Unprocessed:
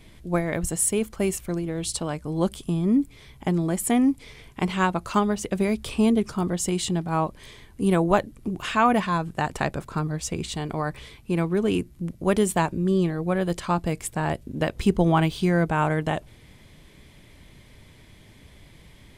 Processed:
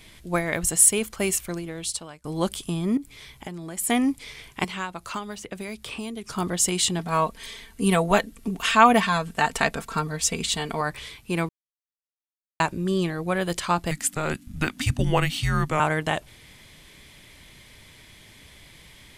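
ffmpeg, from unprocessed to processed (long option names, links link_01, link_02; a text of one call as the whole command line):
ffmpeg -i in.wav -filter_complex "[0:a]asettb=1/sr,asplit=3[link_01][link_02][link_03];[link_01]atrim=end=2.974[link_04];[link_02]atrim=start=2.97:end=3.89,asetpts=PTS-STARTPTS,afade=type=in:duration=0.004:curve=qsin,afade=type=out:start_time=0.916:duration=0.004:curve=qsin,acompressor=threshold=-30dB:ratio=6:attack=3.2:release=140:knee=1:detection=peak[link_05];[link_03]atrim=start=3.886[link_06];[link_04][link_05]acrossfade=duration=0.004:curve1=hsin:curve2=qsin[link_07];[link_07][link_06]acrossfade=duration=0.004:curve1=qsin:curve2=hsin,asettb=1/sr,asplit=3[link_08][link_09][link_10];[link_08]atrim=end=4.644[link_11];[link_09]atrim=start=4.64:end=6.3,asetpts=PTS-STARTPTS,afade=type=in:duration=0.004:curve=qsin,afade=type=out:start_time=1.656:duration=0.004:curve=qsin,acrossover=split=83|3000[link_12][link_13][link_14];[link_12]acompressor=threshold=-55dB:ratio=4[link_15];[link_13]acompressor=threshold=-32dB:ratio=4[link_16];[link_14]acompressor=threshold=-51dB:ratio=4[link_17];[link_15][link_16][link_17]amix=inputs=3:normalize=0[link_18];[link_10]atrim=start=6.296[link_19];[link_11][link_18]acrossfade=duration=0.004:curve1=hsin:curve2=qsin[link_20];[link_20][link_19]acrossfade=duration=0.004:curve1=qsin:curve2=hsin,asettb=1/sr,asplit=3[link_21][link_22][link_23];[link_21]atrim=end=6.994[link_24];[link_22]atrim=start=6.99:end=10.81,asetpts=PTS-STARTPTS,afade=type=in:duration=0.004:curve=qsin,afade=type=out:start_time=3.816:duration=0.004:curve=qsin,aecho=1:1:4.4:0.65,atrim=end_sample=168462[link_25];[link_23]atrim=start=10.806[link_26];[link_24][link_25]acrossfade=duration=0.004:curve1=hsin:curve2=qsin[link_27];[link_27][link_26]acrossfade=duration=0.004:curve1=qsin:curve2=hsin,asettb=1/sr,asplit=3[link_28][link_29][link_30];[link_28]atrim=end=13.914[link_31];[link_29]atrim=start=13.91:end=15.8,asetpts=PTS-STARTPTS,afade=type=in:duration=0.004:curve=qsin,afade=type=out:start_time=1.886:duration=0.004:curve=qsin,afreqshift=-310[link_32];[link_30]atrim=start=15.796[link_33];[link_31][link_32]acrossfade=duration=0.004:curve1=hsin:curve2=qsin[link_34];[link_34][link_33]acrossfade=duration=0.004:curve1=qsin:curve2=hsin,asplit=4[link_35][link_36][link_37][link_38];[link_35]atrim=end=2.24,asetpts=PTS-STARTPTS,afade=type=out:start_time=1.41:duration=0.83:silence=0.0794328[link_39];[link_36]atrim=start=2.24:end=11.49,asetpts=PTS-STARTPTS,afade=type=in:duration=0.004:curve=hsin:silence=0.0794328,afade=type=out:start_time=9.246:duration=0.004:curve=hsin[link_40];[link_37]atrim=start=11.49:end=12.6,asetpts=PTS-STARTPTS,volume=0[link_41];[link_38]atrim=start=12.6,asetpts=PTS-STARTPTS,afade=type=in:duration=0.004:curve=hsin[link_42];[link_39][link_40][link_41][link_42]concat=n=4:v=0:a=1,tiltshelf=frequency=940:gain=-5.5,volume=2dB" out.wav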